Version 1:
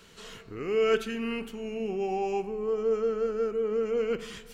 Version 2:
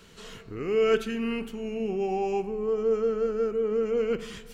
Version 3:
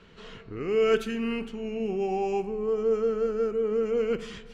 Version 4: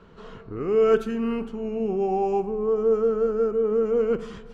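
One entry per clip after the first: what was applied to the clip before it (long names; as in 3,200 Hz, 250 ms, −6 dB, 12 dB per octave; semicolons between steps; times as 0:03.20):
low-shelf EQ 360 Hz +4.5 dB
low-pass that shuts in the quiet parts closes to 2,900 Hz, open at −22.5 dBFS
high shelf with overshoot 1,600 Hz −8 dB, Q 1.5; level +3.5 dB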